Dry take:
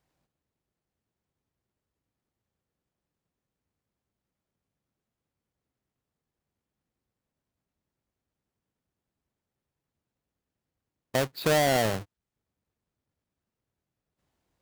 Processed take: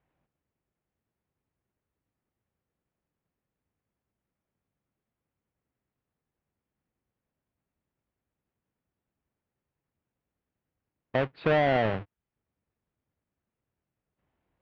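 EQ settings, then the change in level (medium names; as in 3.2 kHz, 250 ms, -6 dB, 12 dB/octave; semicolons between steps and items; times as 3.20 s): low-pass 2.8 kHz 24 dB/octave; 0.0 dB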